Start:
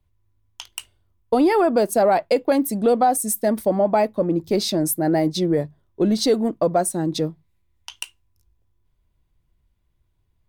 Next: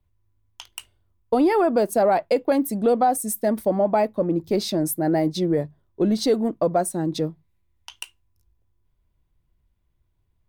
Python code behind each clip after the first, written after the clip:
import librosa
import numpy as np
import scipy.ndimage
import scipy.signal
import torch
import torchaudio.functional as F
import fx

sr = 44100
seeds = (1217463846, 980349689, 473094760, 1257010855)

y = fx.peak_eq(x, sr, hz=6500.0, db=-3.5, octaves=2.5)
y = y * librosa.db_to_amplitude(-1.5)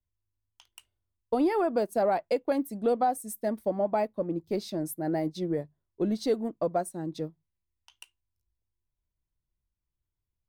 y = fx.upward_expand(x, sr, threshold_db=-37.0, expansion=1.5)
y = y * librosa.db_to_amplitude(-6.0)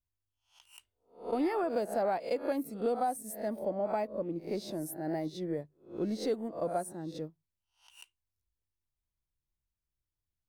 y = fx.spec_swells(x, sr, rise_s=0.37)
y = y * librosa.db_to_amplitude(-6.0)